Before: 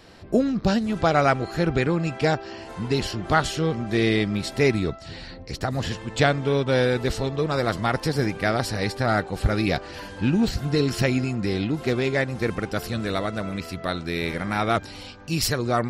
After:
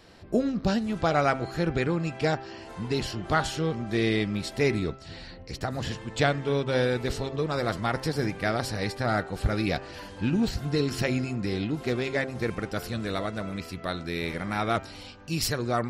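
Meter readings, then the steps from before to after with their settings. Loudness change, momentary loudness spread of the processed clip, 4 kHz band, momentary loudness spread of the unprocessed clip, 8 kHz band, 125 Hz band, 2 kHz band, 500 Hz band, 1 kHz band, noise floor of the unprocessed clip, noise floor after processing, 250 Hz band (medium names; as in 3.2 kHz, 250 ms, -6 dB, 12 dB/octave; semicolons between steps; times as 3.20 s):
-4.0 dB, 8 LU, -4.0 dB, 8 LU, -4.0 dB, -4.5 dB, -4.0 dB, -4.0 dB, -4.0 dB, -40 dBFS, -44 dBFS, -4.0 dB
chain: de-hum 133 Hz, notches 23; trim -4 dB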